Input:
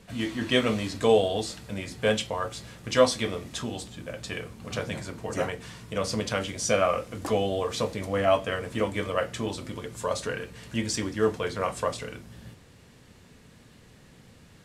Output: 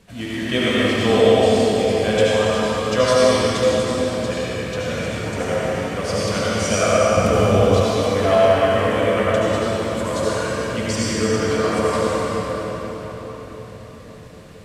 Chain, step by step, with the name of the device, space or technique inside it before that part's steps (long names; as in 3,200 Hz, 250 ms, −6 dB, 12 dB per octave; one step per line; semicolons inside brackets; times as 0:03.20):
cathedral (convolution reverb RT60 5.3 s, pre-delay 66 ms, DRR −9 dB)
0:07.17–0:07.83: low-shelf EQ 180 Hz +10.5 dB